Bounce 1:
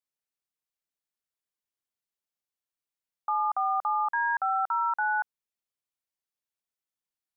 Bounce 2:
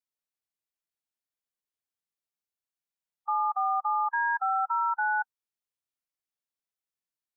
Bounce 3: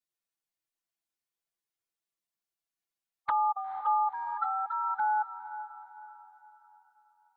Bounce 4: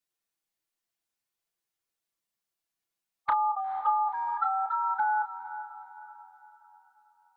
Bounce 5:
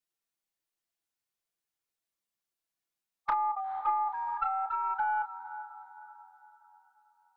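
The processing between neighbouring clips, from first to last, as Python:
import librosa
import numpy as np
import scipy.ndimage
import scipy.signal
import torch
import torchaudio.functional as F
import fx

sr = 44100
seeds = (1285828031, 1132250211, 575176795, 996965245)

y1 = fx.hpss(x, sr, part='percussive', gain_db=-11)
y2 = y1 + 1.0 * np.pad(y1, (int(6.0 * sr / 1000.0), 0))[:len(y1)]
y2 = fx.env_flanger(y2, sr, rest_ms=8.8, full_db=-21.5)
y2 = fx.echo_diffused(y2, sr, ms=481, feedback_pct=41, wet_db=-12.5)
y3 = fx.doubler(y2, sr, ms=31.0, db=-9.5)
y3 = y3 * 10.0 ** (3.0 / 20.0)
y4 = fx.tracing_dist(y3, sr, depth_ms=0.024)
y4 = y4 * 10.0 ** (-3.0 / 20.0)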